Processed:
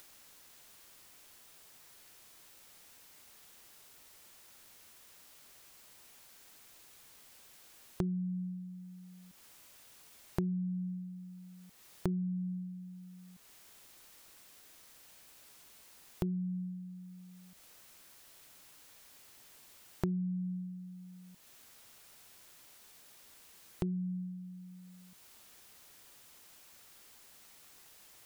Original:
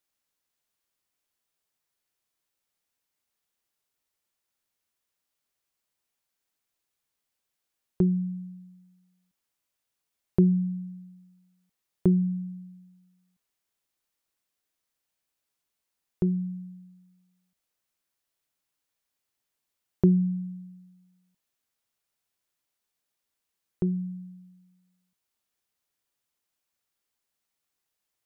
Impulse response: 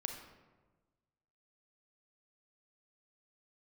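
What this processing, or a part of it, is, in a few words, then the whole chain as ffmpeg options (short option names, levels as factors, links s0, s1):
upward and downward compression: -af "acompressor=mode=upward:threshold=0.00891:ratio=2.5,acompressor=threshold=0.0178:ratio=5,volume=1.26"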